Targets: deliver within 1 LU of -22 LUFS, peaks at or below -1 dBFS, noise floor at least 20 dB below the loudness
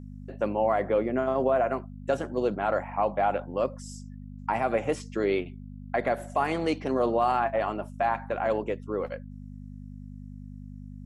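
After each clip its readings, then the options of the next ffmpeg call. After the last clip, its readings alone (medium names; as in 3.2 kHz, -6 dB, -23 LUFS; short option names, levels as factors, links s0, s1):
hum 50 Hz; highest harmonic 250 Hz; hum level -39 dBFS; loudness -28.0 LUFS; peak level -13.0 dBFS; loudness target -22.0 LUFS
-> -af "bandreject=f=50:t=h:w=4,bandreject=f=100:t=h:w=4,bandreject=f=150:t=h:w=4,bandreject=f=200:t=h:w=4,bandreject=f=250:t=h:w=4"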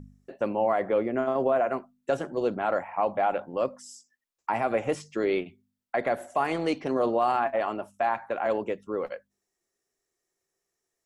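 hum not found; loudness -28.0 LUFS; peak level -13.5 dBFS; loudness target -22.0 LUFS
-> -af "volume=2"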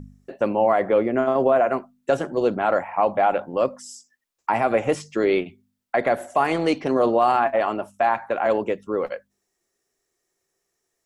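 loudness -22.0 LUFS; peak level -7.5 dBFS; noise floor -77 dBFS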